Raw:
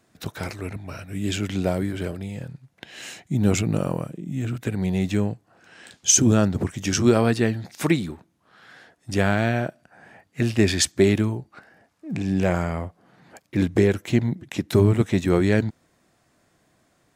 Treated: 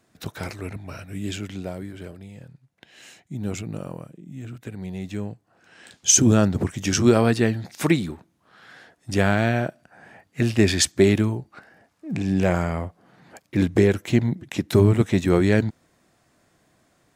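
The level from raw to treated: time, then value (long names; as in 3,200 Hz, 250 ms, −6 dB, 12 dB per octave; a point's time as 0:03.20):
0:01.08 −1 dB
0:01.68 −9 dB
0:05.02 −9 dB
0:06.15 +1 dB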